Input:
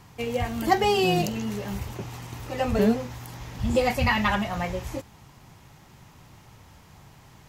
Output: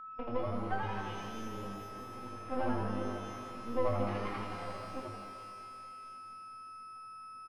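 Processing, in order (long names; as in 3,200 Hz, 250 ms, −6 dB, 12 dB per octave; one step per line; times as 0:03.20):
expanding power law on the bin magnitudes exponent 1.6
noise gate −40 dBFS, range −14 dB
downward compressor 6 to 1, threshold −39 dBFS, peak gain reduction 22 dB
band-pass filter 150–6,900 Hz
stiff-string resonator 250 Hz, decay 0.23 s, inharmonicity 0.008
half-wave rectification
high-frequency loss of the air 290 metres
echo with shifted repeats 82 ms, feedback 46%, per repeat +100 Hz, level −4 dB
steady tone 1,300 Hz −63 dBFS
reverb with rising layers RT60 2.6 s, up +12 semitones, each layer −8 dB, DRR 5 dB
level +17.5 dB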